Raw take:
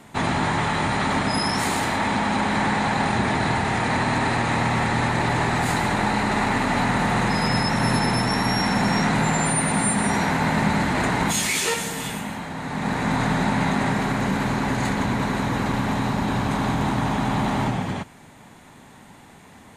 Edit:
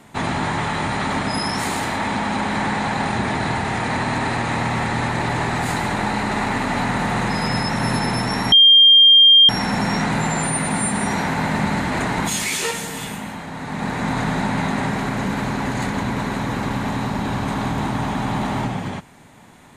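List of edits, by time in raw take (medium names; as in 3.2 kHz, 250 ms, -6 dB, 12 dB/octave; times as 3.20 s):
8.52 s: add tone 3.2 kHz -6.5 dBFS 0.97 s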